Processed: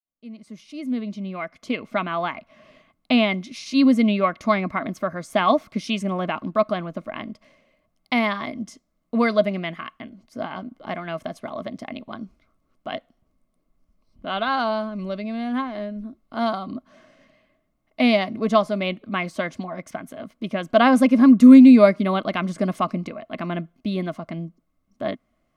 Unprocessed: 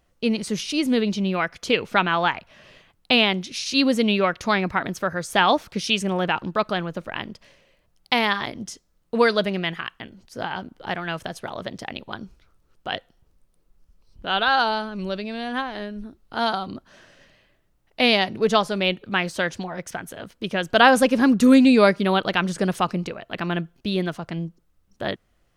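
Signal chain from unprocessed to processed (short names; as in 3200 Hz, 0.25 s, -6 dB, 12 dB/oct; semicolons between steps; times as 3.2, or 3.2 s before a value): opening faded in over 2.83 s; small resonant body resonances 250/630/1100/2100 Hz, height 15 dB, ringing for 35 ms; gain -8.5 dB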